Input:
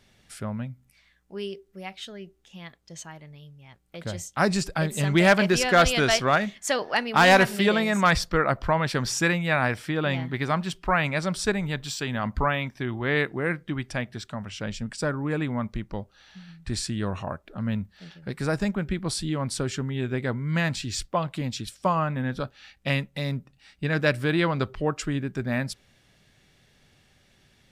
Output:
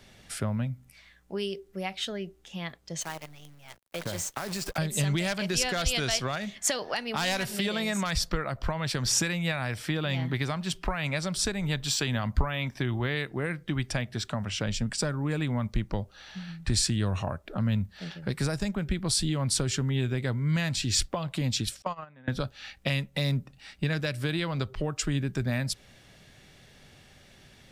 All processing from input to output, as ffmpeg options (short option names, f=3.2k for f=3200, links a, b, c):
-filter_complex "[0:a]asettb=1/sr,asplit=3[a][b][c];[a]atrim=end=3.014[d];[b]atrim=start=3.01:end=4.78,asetpts=PTS-STARTPTS,afade=t=in:d=0.004:c=qsin,afade=t=out:st=1.766:d=0.004:c=qsin,lowshelf=f=260:g=-7.5,acompressor=threshold=-34dB:ratio=20:attack=3.2:release=140:knee=1:detection=peak,acrusher=bits=8:dc=4:mix=0:aa=0.000001[e];[c]atrim=start=4.776[f];[d][e]acrossfade=d=0.004:c1=hsin:c2=qsin[g];[g][f]acrossfade=d=0.004:c1=qsin:c2=hsin,asettb=1/sr,asplit=3[h][i][j];[h]atrim=end=21.824[k];[i]atrim=start=21.82:end=22.28,asetpts=PTS-STARTPTS,afade=t=in:d=0.004:c=qsin,afade=t=out:st=0.456:d=0.004:c=qsin,lowpass=5.5k,agate=range=-25dB:threshold=-22dB:ratio=16:release=100:detection=peak,lowshelf=f=340:g=-8.5[l];[j]atrim=start=22.276[m];[k][l]acrossfade=d=0.004:c1=hsin:c2=qsin[n];[n][m]acrossfade=d=0.004:c1=qsin:c2=hsin,equalizer=f=620:t=o:w=0.77:g=2,alimiter=limit=-17.5dB:level=0:latency=1:release=307,acrossover=split=130|3000[o][p][q];[p]acompressor=threshold=-36dB:ratio=6[r];[o][r][q]amix=inputs=3:normalize=0,volume=6dB"